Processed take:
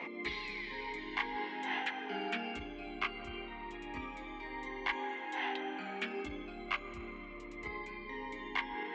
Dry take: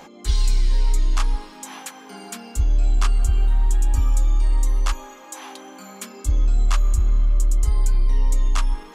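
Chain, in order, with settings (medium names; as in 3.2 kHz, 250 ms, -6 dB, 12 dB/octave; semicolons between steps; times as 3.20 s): peak limiter -17 dBFS, peak gain reduction 8 dB; cabinet simulation 350–2900 Hz, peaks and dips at 360 Hz +3 dB, 560 Hz -9 dB, 1.3 kHz -7 dB, 2.1 kHz +10 dB; Shepard-style phaser falling 0.27 Hz; trim +4.5 dB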